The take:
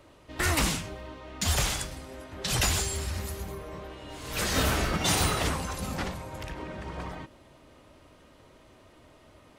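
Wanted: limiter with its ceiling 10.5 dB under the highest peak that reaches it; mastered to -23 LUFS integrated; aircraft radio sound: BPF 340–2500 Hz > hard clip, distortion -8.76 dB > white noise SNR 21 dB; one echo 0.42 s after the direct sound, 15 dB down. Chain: limiter -24 dBFS; BPF 340–2500 Hz; echo 0.42 s -15 dB; hard clip -39 dBFS; white noise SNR 21 dB; gain +19.5 dB

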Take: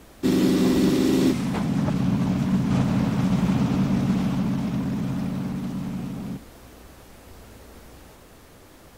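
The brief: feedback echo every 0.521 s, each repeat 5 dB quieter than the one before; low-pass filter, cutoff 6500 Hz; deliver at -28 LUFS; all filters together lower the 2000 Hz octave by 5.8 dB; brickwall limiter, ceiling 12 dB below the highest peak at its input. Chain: LPF 6500 Hz; bell 2000 Hz -7.5 dB; limiter -21.5 dBFS; feedback echo 0.521 s, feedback 56%, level -5 dB; gain +0.5 dB

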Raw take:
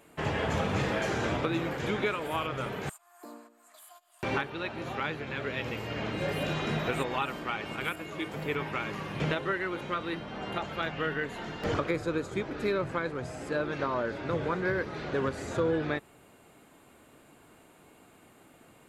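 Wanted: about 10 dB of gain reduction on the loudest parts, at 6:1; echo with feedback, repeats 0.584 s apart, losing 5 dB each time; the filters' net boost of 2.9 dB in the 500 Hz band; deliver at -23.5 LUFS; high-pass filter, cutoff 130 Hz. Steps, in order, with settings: HPF 130 Hz; bell 500 Hz +3.5 dB; compressor 6:1, threshold -33 dBFS; feedback echo 0.584 s, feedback 56%, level -5 dB; gain +12.5 dB

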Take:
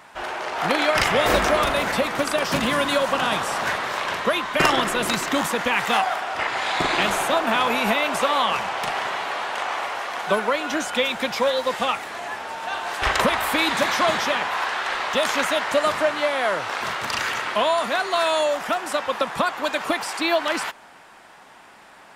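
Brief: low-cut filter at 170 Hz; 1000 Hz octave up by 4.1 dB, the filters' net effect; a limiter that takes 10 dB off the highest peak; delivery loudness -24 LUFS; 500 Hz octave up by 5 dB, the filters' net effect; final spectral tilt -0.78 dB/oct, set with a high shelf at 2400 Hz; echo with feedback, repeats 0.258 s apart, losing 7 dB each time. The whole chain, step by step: HPF 170 Hz; bell 500 Hz +5 dB; bell 1000 Hz +4.5 dB; high shelf 2400 Hz -4.5 dB; limiter -12 dBFS; feedback echo 0.258 s, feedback 45%, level -7 dB; gain -3 dB

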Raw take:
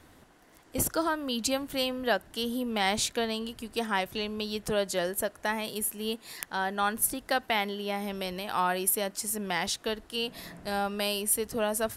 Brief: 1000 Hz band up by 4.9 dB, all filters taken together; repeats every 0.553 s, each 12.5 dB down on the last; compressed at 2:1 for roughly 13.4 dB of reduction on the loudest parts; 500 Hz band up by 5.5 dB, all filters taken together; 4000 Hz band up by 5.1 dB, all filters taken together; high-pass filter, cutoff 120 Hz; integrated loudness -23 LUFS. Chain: HPF 120 Hz; bell 500 Hz +5.5 dB; bell 1000 Hz +4 dB; bell 4000 Hz +6.5 dB; compressor 2:1, threshold -44 dBFS; feedback echo 0.553 s, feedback 24%, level -12.5 dB; gain +15 dB

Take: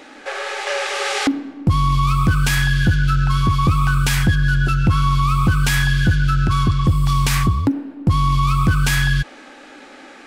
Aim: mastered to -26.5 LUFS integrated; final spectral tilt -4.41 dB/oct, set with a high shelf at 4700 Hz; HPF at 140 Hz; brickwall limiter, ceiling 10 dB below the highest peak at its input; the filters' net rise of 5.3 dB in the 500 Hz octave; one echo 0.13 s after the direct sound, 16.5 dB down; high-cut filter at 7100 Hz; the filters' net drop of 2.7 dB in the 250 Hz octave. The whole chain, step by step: HPF 140 Hz; LPF 7100 Hz; bell 250 Hz -4 dB; bell 500 Hz +7.5 dB; high shelf 4700 Hz -5.5 dB; limiter -15 dBFS; echo 0.13 s -16.5 dB; gain -3.5 dB

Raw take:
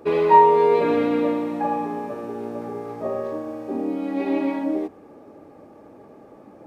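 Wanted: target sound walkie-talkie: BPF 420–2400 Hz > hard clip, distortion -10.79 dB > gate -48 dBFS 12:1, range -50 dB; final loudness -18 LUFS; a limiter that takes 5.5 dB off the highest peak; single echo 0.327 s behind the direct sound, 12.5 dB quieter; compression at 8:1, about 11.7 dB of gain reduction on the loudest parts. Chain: compressor 8:1, threshold -20 dBFS; limiter -18.5 dBFS; BPF 420–2400 Hz; echo 0.327 s -12.5 dB; hard clip -29 dBFS; gate -48 dBFS 12:1, range -50 dB; gain +15 dB

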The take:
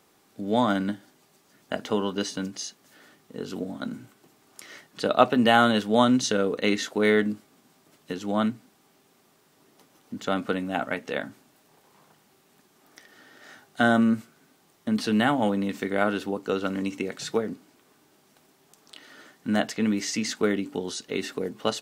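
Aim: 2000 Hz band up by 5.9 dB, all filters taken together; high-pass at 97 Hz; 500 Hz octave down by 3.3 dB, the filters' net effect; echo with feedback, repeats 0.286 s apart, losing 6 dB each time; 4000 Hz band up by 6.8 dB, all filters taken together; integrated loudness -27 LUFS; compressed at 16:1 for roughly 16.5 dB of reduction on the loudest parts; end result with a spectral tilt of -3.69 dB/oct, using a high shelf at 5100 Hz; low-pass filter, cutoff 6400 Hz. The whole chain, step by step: HPF 97 Hz; LPF 6400 Hz; bell 500 Hz -4.5 dB; bell 2000 Hz +7 dB; bell 4000 Hz +8.5 dB; high shelf 5100 Hz -4.5 dB; compressor 16:1, threshold -28 dBFS; feedback echo 0.286 s, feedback 50%, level -6 dB; gain +6.5 dB

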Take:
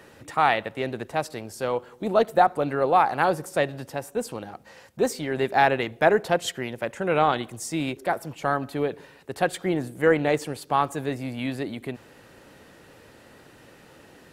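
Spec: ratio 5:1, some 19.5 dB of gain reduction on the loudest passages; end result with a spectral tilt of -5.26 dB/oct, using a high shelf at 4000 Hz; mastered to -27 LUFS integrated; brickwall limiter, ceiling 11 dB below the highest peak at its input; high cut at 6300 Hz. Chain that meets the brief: LPF 6300 Hz; high shelf 4000 Hz -4 dB; compressor 5:1, threshold -37 dBFS; gain +16.5 dB; limiter -14 dBFS

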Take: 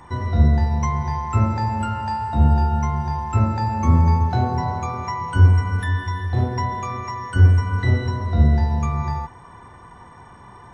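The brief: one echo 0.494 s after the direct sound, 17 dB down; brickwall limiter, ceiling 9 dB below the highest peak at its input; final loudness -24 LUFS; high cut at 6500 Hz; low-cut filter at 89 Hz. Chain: HPF 89 Hz; LPF 6500 Hz; limiter -14.5 dBFS; echo 0.494 s -17 dB; gain +0.5 dB

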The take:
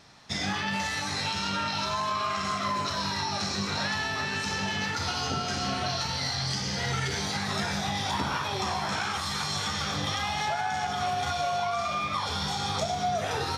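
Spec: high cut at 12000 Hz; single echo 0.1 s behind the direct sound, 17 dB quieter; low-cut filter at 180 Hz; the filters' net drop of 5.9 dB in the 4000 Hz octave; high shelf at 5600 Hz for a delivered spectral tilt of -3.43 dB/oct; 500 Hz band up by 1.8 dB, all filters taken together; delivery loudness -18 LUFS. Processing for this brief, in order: HPF 180 Hz; LPF 12000 Hz; bell 500 Hz +3 dB; bell 4000 Hz -5.5 dB; high shelf 5600 Hz -4.5 dB; echo 0.1 s -17 dB; gain +12.5 dB

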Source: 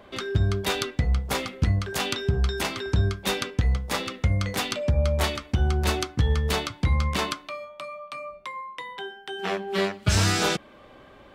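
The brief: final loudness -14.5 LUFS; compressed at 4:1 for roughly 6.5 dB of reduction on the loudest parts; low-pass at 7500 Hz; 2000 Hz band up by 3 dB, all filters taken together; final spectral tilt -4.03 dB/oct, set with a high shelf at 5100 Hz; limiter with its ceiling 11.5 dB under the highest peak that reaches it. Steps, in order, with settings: LPF 7500 Hz; bell 2000 Hz +5 dB; high shelf 5100 Hz -8 dB; compressor 4:1, threshold -25 dBFS; gain +20 dB; limiter -5 dBFS

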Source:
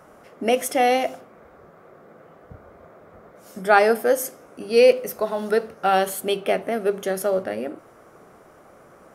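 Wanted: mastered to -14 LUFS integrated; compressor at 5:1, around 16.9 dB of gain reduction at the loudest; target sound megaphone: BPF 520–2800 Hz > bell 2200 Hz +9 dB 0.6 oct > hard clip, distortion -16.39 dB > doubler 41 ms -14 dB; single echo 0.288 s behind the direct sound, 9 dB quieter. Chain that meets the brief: compressor 5:1, threshold -30 dBFS; BPF 520–2800 Hz; bell 2200 Hz +9 dB 0.6 oct; echo 0.288 s -9 dB; hard clip -27 dBFS; doubler 41 ms -14 dB; gain +22 dB

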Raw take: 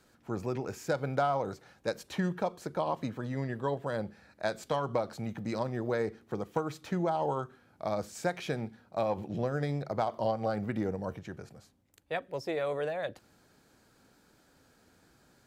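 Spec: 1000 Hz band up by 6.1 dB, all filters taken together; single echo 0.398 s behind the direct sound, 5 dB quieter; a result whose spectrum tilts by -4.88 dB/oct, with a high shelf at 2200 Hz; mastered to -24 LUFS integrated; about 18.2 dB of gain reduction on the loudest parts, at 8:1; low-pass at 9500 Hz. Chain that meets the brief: LPF 9500 Hz; bell 1000 Hz +7 dB; high shelf 2200 Hz +6.5 dB; compressor 8:1, threshold -41 dBFS; echo 0.398 s -5 dB; gain +21 dB

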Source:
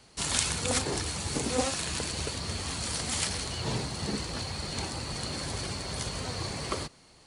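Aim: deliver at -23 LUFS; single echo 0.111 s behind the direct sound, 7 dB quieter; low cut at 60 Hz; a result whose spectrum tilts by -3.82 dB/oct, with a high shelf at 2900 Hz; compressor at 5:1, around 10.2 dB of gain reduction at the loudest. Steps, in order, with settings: HPF 60 Hz; high shelf 2900 Hz -7 dB; compressor 5:1, threshold -36 dBFS; echo 0.111 s -7 dB; gain +15.5 dB

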